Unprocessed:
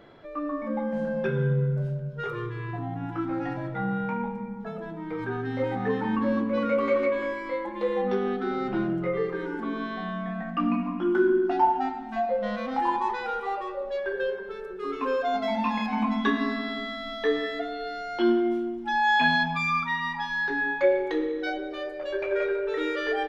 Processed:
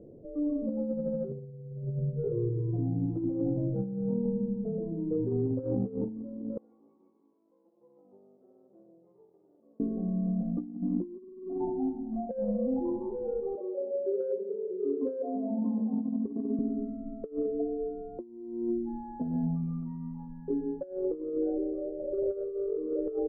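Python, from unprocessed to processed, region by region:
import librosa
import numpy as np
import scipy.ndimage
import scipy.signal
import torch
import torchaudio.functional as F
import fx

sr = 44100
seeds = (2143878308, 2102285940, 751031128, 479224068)

y = fx.chain(x, sr, fx.lower_of_two(delay_ms=0.88),
    fx.highpass(hz=420.0, slope=6),
    fx.differentiator(), at=(6.57, 9.8))
y = fx.chain(y, sr, fx.highpass(hz=220.0, slope=24),
    fx.air_absorb(metres=220.0), at=(13.55, 16.59))
y = scipy.signal.sosfilt(scipy.signal.cheby1(4, 1.0, 510.0, 'lowpass', fs=sr, output='sos'), y)
y = fx.over_compress(y, sr, threshold_db=-32.0, ratio=-0.5)
y = y * 10.0 ** (1.5 / 20.0)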